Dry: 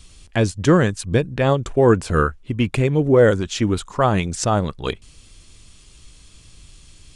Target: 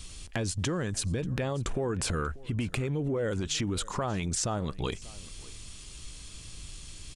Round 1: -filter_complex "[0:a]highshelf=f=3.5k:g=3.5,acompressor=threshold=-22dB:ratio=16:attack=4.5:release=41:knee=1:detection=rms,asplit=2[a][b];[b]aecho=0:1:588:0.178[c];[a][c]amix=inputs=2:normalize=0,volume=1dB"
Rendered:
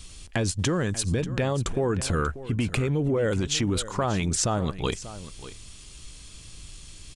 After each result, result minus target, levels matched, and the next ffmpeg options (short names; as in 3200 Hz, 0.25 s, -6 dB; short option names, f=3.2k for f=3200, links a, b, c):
compressor: peak gain reduction -5.5 dB; echo-to-direct +6.5 dB
-filter_complex "[0:a]highshelf=f=3.5k:g=3.5,acompressor=threshold=-28dB:ratio=16:attack=4.5:release=41:knee=1:detection=rms,asplit=2[a][b];[b]aecho=0:1:588:0.178[c];[a][c]amix=inputs=2:normalize=0,volume=1dB"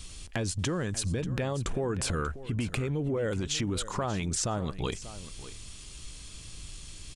echo-to-direct +6.5 dB
-filter_complex "[0:a]highshelf=f=3.5k:g=3.5,acompressor=threshold=-28dB:ratio=16:attack=4.5:release=41:knee=1:detection=rms,asplit=2[a][b];[b]aecho=0:1:588:0.0841[c];[a][c]amix=inputs=2:normalize=0,volume=1dB"